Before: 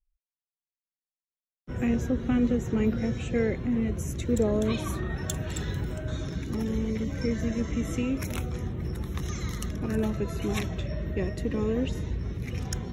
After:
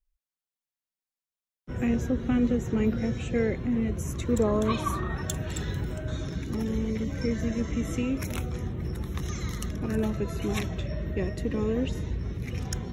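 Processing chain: 4.05–5.22 s: peaking EQ 1.1 kHz +11 dB 0.53 oct

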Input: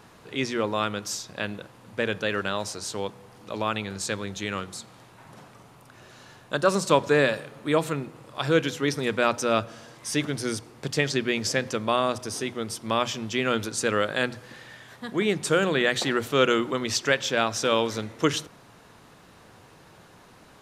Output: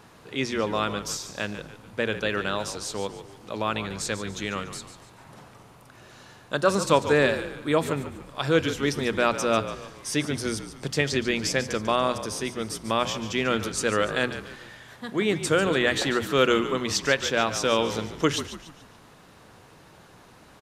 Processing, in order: frequency-shifting echo 144 ms, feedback 41%, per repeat -50 Hz, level -11.5 dB

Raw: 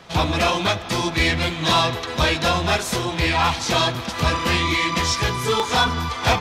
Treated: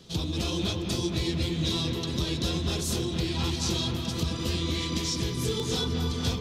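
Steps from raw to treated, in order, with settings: high-order bell 1.2 kHz -15.5 dB 2.4 oct; compression, threshold -24 dBFS, peak gain reduction 8 dB; on a send: bucket-brigade echo 232 ms, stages 4096, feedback 71%, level -4 dB; on the sum: trim -2.5 dB

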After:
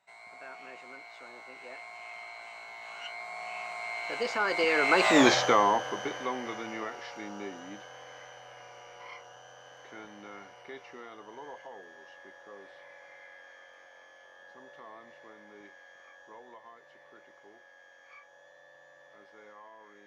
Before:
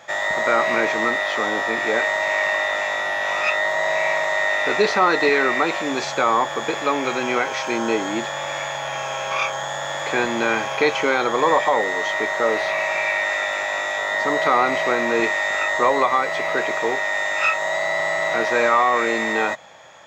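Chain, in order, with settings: Doppler pass-by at 5.21 s, 42 m/s, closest 5.6 m; trim +4.5 dB

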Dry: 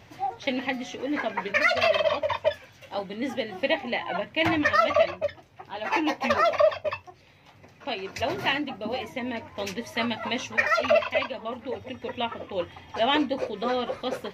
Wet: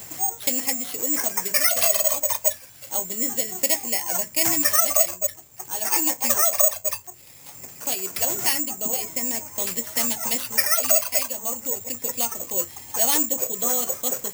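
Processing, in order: careless resampling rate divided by 6×, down none, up zero stuff; three bands compressed up and down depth 40%; trim -4.5 dB

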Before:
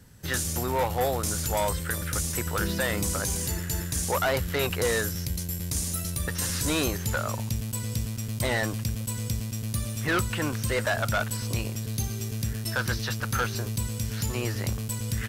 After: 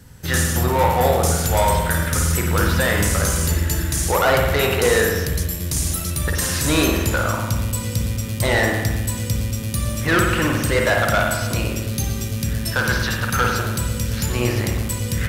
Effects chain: spring tank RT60 1.2 s, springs 49 ms, chirp 65 ms, DRR 0 dB; trim +6.5 dB

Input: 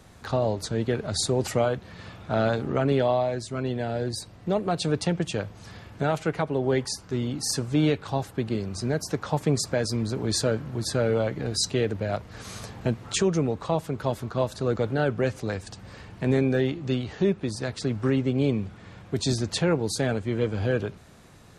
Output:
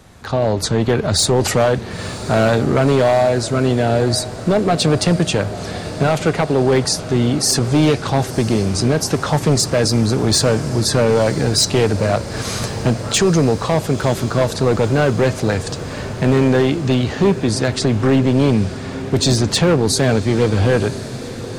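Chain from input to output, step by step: level rider gain up to 9 dB; in parallel at 0 dB: peak limiter -15.5 dBFS, peak gain reduction 11.5 dB; on the sum: overload inside the chain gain 9 dB; echo that smears into a reverb 980 ms, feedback 73%, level -15.5 dB

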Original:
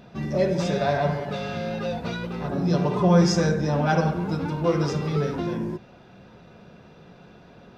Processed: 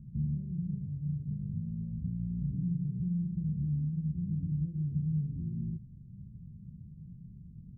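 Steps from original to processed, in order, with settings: compression, threshold -31 dBFS, peak gain reduction 17 dB; inverse Chebyshev low-pass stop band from 710 Hz, stop band 70 dB; trim +7 dB

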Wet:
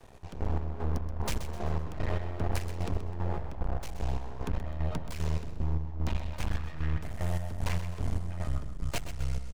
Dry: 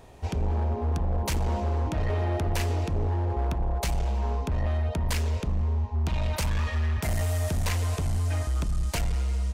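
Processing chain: tracing distortion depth 0.033 ms; 6.36–8.95 s: treble shelf 3.8 kHz -9 dB; half-wave rectifier; square tremolo 2.5 Hz, depth 65%, duty 45%; feedback delay 128 ms, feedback 41%, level -11 dB

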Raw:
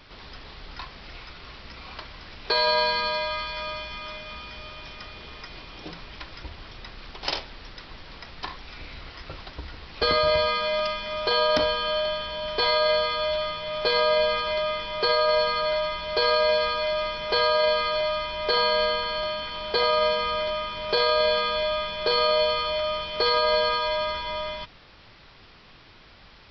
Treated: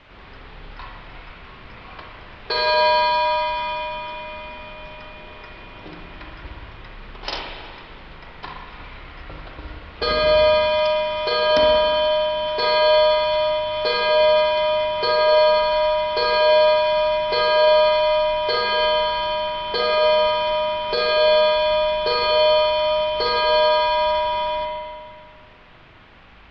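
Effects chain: level-controlled noise filter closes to 2 kHz; spring tank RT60 1.8 s, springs 39/59 ms, chirp 80 ms, DRR -0.5 dB; band noise 530–3200 Hz -54 dBFS

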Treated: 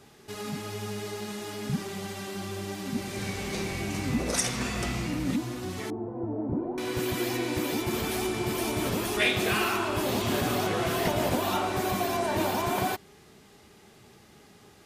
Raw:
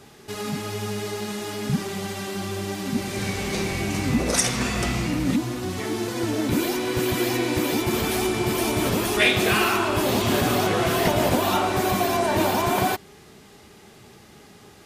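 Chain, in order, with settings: 5.90–6.78 s: Chebyshev low-pass 840 Hz, order 3; trim -6 dB

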